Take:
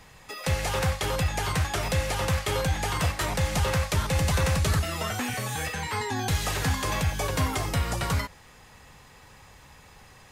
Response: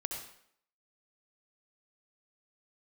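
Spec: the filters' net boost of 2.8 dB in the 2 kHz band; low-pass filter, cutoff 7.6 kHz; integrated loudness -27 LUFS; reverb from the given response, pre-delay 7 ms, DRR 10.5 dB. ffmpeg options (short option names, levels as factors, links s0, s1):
-filter_complex "[0:a]lowpass=7600,equalizer=f=2000:t=o:g=3.5,asplit=2[s0][s1];[1:a]atrim=start_sample=2205,adelay=7[s2];[s1][s2]afir=irnorm=-1:irlink=0,volume=0.266[s3];[s0][s3]amix=inputs=2:normalize=0,volume=0.944"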